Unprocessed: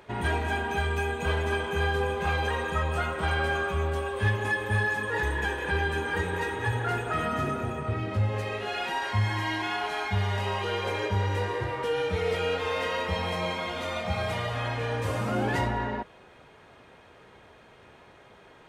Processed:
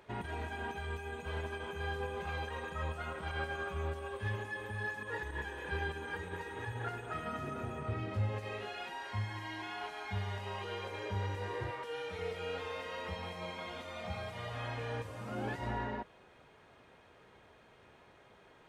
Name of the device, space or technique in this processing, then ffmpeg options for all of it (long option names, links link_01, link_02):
de-esser from a sidechain: -filter_complex "[0:a]asettb=1/sr,asplit=3[link_01][link_02][link_03];[link_01]atrim=end=11.714[link_04];[link_02]atrim=start=11.71:end=12.19,asetpts=PTS-STARTPTS,afade=type=in:duration=0.004:curve=qsin,afade=type=out:start_time=0.476:duration=0.004:curve=qsin,lowshelf=frequency=360:gain=-9.5[link_05];[link_03]atrim=start=12.186[link_06];[link_04][link_05]acrossfade=duration=0.004:curve1=hsin:curve2=qsin[link_07];[link_07][link_06]acrossfade=duration=0.004:curve1=qsin:curve2=hsin,asplit=2[link_08][link_09];[link_09]highpass=frequency=6400:width=0.5412,highpass=frequency=6400:width=1.3066,apad=whole_len=824159[link_10];[link_08][link_10]sidechaincompress=threshold=-59dB:ratio=5:attack=4.8:release=44,volume=-7.5dB"